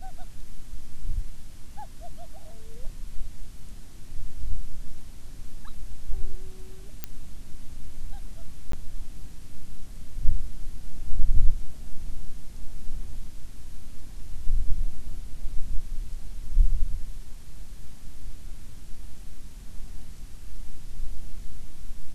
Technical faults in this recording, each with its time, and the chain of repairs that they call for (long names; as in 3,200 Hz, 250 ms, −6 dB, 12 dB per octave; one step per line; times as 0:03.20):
0:07.04: click −15 dBFS
0:08.72–0:08.73: drop-out 13 ms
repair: click removal
repair the gap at 0:08.72, 13 ms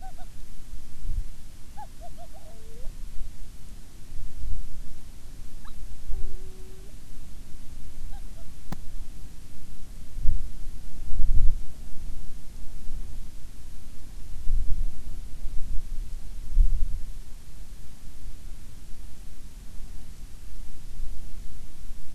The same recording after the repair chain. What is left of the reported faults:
none of them is left